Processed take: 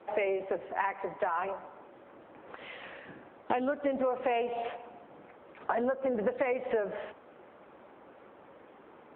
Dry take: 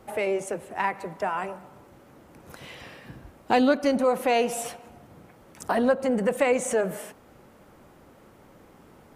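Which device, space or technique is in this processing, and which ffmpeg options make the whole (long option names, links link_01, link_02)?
voicemail: -af "highpass=340,lowpass=2900,acompressor=threshold=-28dB:ratio=12,volume=2.5dB" -ar 8000 -c:a libopencore_amrnb -b:a 7950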